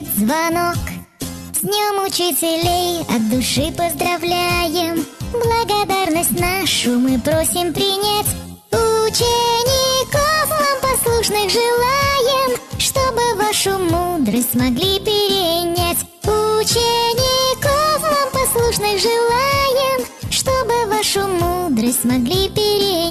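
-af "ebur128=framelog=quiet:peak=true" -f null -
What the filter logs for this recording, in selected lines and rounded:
Integrated loudness:
  I:         -16.2 LUFS
  Threshold: -26.3 LUFS
Loudness range:
  LRA:         2.5 LU
  Threshold: -36.2 LUFS
  LRA low:   -17.6 LUFS
  LRA high:  -15.1 LUFS
True peak:
  Peak:       -8.1 dBFS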